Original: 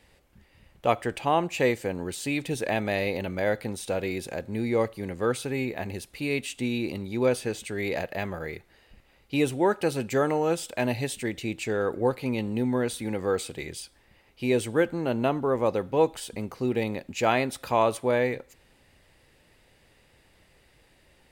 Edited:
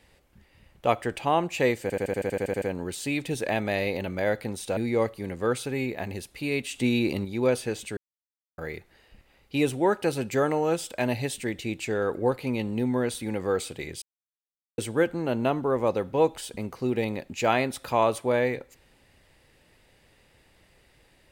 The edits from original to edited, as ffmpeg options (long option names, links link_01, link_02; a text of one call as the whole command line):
ffmpeg -i in.wav -filter_complex "[0:a]asplit=18[link_01][link_02][link_03][link_04][link_05][link_06][link_07][link_08][link_09][link_10][link_11][link_12][link_13][link_14][link_15][link_16][link_17][link_18];[link_01]atrim=end=1.902[link_19];[link_02]atrim=start=1.818:end=1.902[link_20];[link_03]atrim=start=1.818:end=1.902[link_21];[link_04]atrim=start=1.818:end=1.902[link_22];[link_05]atrim=start=1.818:end=1.902[link_23];[link_06]atrim=start=1.818:end=1.902[link_24];[link_07]atrim=start=1.818:end=1.902[link_25];[link_08]atrim=start=1.818:end=1.902[link_26];[link_09]atrim=start=1.818:end=1.902[link_27];[link_10]atrim=start=1.818:end=1.902[link_28];[link_11]atrim=start=1.818:end=3.972[link_29];[link_12]atrim=start=4.558:end=6.532[link_30];[link_13]atrim=start=6.528:end=7.042,asetpts=PTS-STARTPTS,volume=4.5dB[link_31];[link_14]atrim=start=7.038:end=7.76,asetpts=PTS-STARTPTS,afade=type=out:start_time=0.718:duration=0.004:curve=hsin[link_32];[link_15]atrim=start=7.76:end=8.37,asetpts=PTS-STARTPTS,volume=0[link_33];[link_16]atrim=start=8.37:end=13.81,asetpts=PTS-STARTPTS,afade=type=in:duration=0.004:curve=hsin,afade=type=out:start_time=5.436:duration=0.004:curve=hsin[link_34];[link_17]atrim=start=13.81:end=14.57,asetpts=PTS-STARTPTS,volume=0[link_35];[link_18]atrim=start=14.57,asetpts=PTS-STARTPTS,afade=type=in:duration=0.004:curve=hsin[link_36];[link_19][link_20]acrossfade=duration=0.004:curve1=hsin:curve2=hsin[link_37];[link_37][link_21]acrossfade=duration=0.004:curve1=hsin:curve2=hsin[link_38];[link_38][link_22]acrossfade=duration=0.004:curve1=hsin:curve2=hsin[link_39];[link_39][link_23]acrossfade=duration=0.004:curve1=hsin:curve2=hsin[link_40];[link_40][link_24]acrossfade=duration=0.004:curve1=hsin:curve2=hsin[link_41];[link_41][link_25]acrossfade=duration=0.004:curve1=hsin:curve2=hsin[link_42];[link_42][link_26]acrossfade=duration=0.004:curve1=hsin:curve2=hsin[link_43];[link_43][link_27]acrossfade=duration=0.004:curve1=hsin:curve2=hsin[link_44];[link_44][link_28]acrossfade=duration=0.004:curve1=hsin:curve2=hsin[link_45];[link_45][link_29]acrossfade=duration=0.004:curve1=hsin:curve2=hsin[link_46];[link_46][link_30]acrossfade=duration=0.004:curve1=hsin:curve2=hsin[link_47];[link_47][link_31]acrossfade=duration=0.004:curve1=hsin:curve2=hsin[link_48];[link_32][link_33][link_34][link_35][link_36]concat=n=5:v=0:a=1[link_49];[link_48][link_49]acrossfade=duration=0.004:curve1=hsin:curve2=hsin" out.wav